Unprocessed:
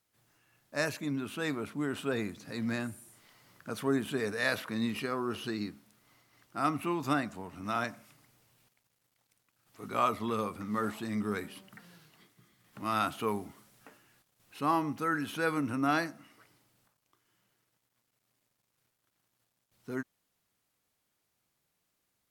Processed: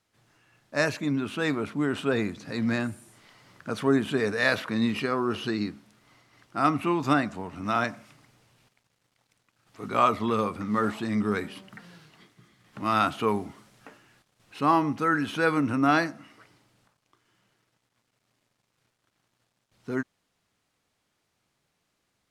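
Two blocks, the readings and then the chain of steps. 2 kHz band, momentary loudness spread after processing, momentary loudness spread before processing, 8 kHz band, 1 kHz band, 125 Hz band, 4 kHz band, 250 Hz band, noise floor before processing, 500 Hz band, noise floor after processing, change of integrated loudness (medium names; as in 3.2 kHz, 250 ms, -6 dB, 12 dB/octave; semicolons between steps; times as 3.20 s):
+6.5 dB, 10 LU, 11 LU, +1.5 dB, +6.5 dB, +7.0 dB, +5.5 dB, +7.0 dB, -80 dBFS, +7.0 dB, -77 dBFS, +6.5 dB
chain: distance through air 53 m; trim +7 dB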